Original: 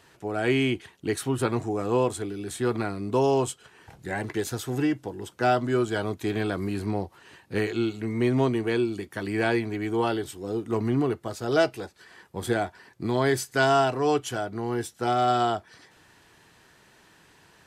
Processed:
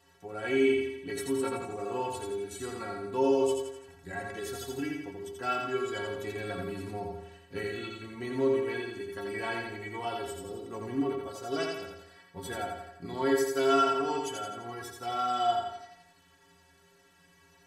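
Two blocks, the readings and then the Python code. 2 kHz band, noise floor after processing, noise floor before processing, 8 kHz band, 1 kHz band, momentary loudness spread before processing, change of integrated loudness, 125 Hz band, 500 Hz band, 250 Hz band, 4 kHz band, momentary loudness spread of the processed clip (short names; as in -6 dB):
-6.0 dB, -62 dBFS, -58 dBFS, -5.0 dB, -4.5 dB, 10 LU, -5.5 dB, -14.0 dB, -4.5 dB, -8.0 dB, -4.5 dB, 14 LU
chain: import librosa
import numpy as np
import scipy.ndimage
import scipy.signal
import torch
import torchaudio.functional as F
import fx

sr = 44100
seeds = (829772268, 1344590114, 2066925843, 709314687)

y = fx.stiff_resonator(x, sr, f0_hz=82.0, decay_s=0.53, stiffness=0.03)
y = fx.echo_feedback(y, sr, ms=85, feedback_pct=50, wet_db=-3.5)
y = F.gain(torch.from_numpy(y), 4.0).numpy()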